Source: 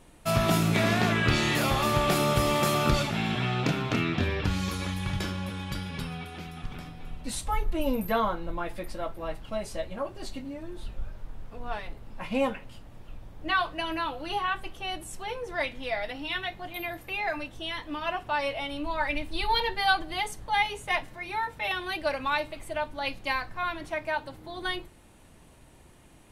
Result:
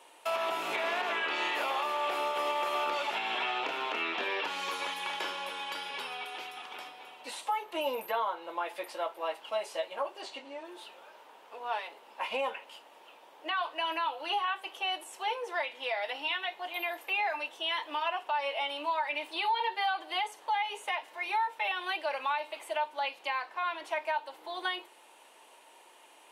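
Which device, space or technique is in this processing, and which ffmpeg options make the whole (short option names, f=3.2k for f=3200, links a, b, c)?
laptop speaker: -filter_complex "[0:a]asettb=1/sr,asplit=3[a][b][c];[a]atrim=end=10.214[d];[b]atrim=start=10.21:end=10.65,asetpts=PTS-STARTPTS,afade=t=in:d=0.004:c=qsin,afade=t=out:st=0.436:d=0.004:c=qsin,lowpass=7.4k[e];[c]atrim=start=10.646[f];[d][e]acrossfade=d=0.004:c1=hsin:c2=qsin[g];[g][f]acrossfade=d=0.004:c1=qsin:c2=hsin,acrossover=split=3000[h][i];[i]acompressor=threshold=-44dB:ratio=4:attack=1:release=60[j];[h][j]amix=inputs=2:normalize=0,asettb=1/sr,asplit=3[k][l][m];[k]atrim=end=23.294[n];[l]atrim=start=23.29:end=23.85,asetpts=PTS-STARTPTS,afade=t=in:d=0.004:c=qsin,afade=t=out:st=0.556:d=0.004:c=qsin,highshelf=f=7.9k:g=-6[o];[m]atrim=start=23.846[p];[n][o]acrossfade=d=0.004:c1=hsin:c2=qsin[q];[q][p]acrossfade=d=0.004:c1=qsin:c2=hsin,highpass=f=420:w=0.5412,highpass=f=420:w=1.3066,equalizer=f=920:t=o:w=0.35:g=8.5,equalizer=f=2.9k:t=o:w=0.58:g=6.5,alimiter=limit=-22.5dB:level=0:latency=1:release=229"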